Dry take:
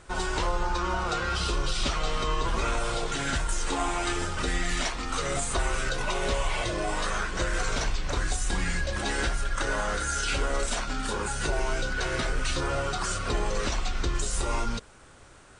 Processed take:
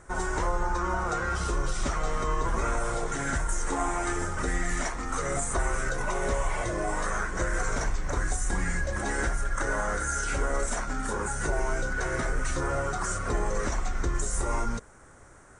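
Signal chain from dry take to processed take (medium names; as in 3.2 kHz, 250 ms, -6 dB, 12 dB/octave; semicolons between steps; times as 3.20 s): high-order bell 3.5 kHz -12.5 dB 1.2 oct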